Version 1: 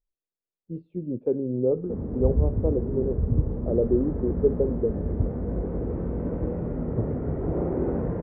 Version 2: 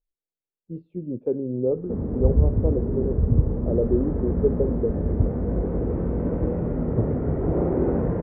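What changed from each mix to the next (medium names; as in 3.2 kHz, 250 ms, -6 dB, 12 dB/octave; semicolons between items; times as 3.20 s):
background +4.0 dB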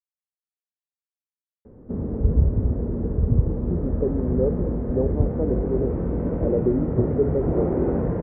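speech: entry +2.75 s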